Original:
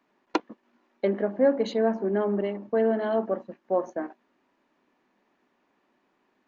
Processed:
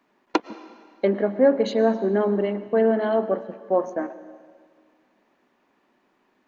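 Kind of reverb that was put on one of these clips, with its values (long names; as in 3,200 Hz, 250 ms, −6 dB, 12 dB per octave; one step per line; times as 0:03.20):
comb and all-pass reverb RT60 1.9 s, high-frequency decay 0.95×, pre-delay 75 ms, DRR 15 dB
level +4 dB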